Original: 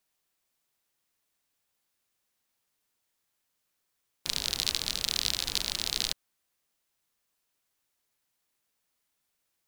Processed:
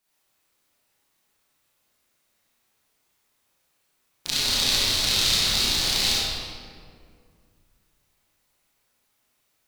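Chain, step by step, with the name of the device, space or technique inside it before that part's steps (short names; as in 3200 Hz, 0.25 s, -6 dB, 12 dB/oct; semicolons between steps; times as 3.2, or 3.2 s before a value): tunnel (flutter echo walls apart 5.6 m, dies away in 0.29 s; reverb RT60 2.1 s, pre-delay 22 ms, DRR -9 dB)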